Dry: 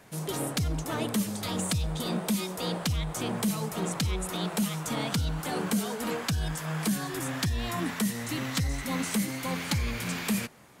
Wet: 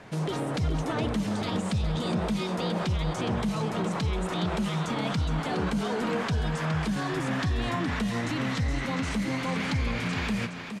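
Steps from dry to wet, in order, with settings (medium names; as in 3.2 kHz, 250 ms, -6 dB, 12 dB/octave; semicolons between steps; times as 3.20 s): peak limiter -28 dBFS, peak gain reduction 11 dB; Bessel low-pass 3.6 kHz, order 2; on a send: delay 416 ms -8 dB; on the sum: trim +7.5 dB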